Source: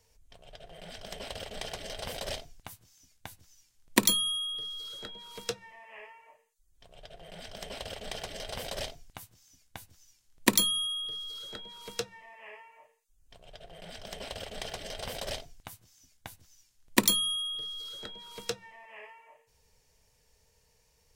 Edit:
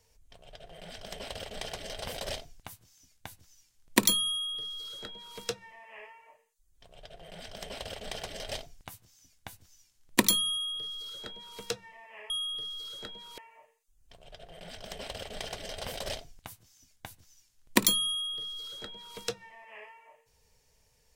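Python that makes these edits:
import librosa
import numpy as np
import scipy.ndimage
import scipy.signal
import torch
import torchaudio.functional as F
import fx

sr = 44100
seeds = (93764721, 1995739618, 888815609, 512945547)

y = fx.edit(x, sr, fx.duplicate(start_s=4.3, length_s=1.08, to_s=12.59),
    fx.cut(start_s=8.51, length_s=0.29), tone=tone)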